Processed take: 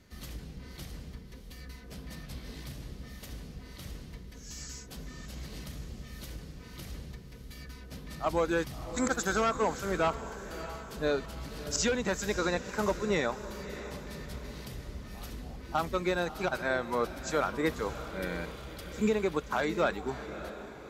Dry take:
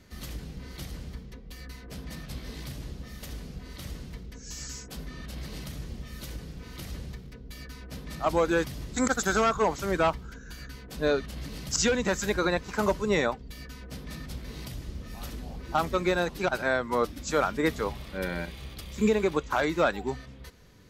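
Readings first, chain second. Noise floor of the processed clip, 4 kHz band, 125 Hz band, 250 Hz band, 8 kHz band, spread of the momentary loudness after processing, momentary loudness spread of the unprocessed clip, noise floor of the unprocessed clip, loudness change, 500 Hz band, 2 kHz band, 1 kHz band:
-47 dBFS, -3.5 dB, -3.5 dB, -3.5 dB, -3.5 dB, 17 LU, 17 LU, -46 dBFS, -4.0 dB, -3.5 dB, -3.5 dB, -3.5 dB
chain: diffused feedback echo 0.621 s, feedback 51%, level -12.5 dB; gain -4 dB

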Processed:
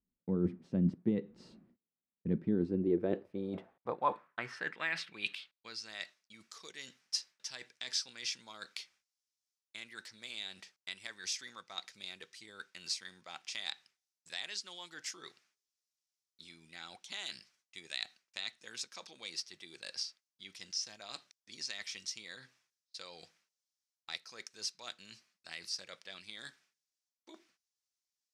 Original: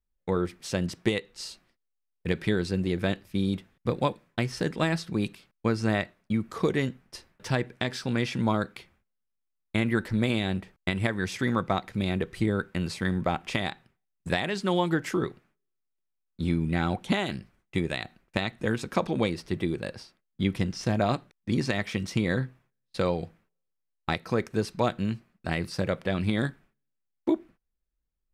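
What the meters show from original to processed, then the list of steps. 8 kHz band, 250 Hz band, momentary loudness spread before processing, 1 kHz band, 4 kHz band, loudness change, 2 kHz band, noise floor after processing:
0.0 dB, -12.5 dB, 7 LU, -12.0 dB, -3.5 dB, -10.5 dB, -11.0 dB, under -85 dBFS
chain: reverse; compressor 10:1, threshold -33 dBFS, peak gain reduction 14.5 dB; reverse; band-pass sweep 220 Hz -> 5600 Hz, 2.4–5.99; gain +11.5 dB

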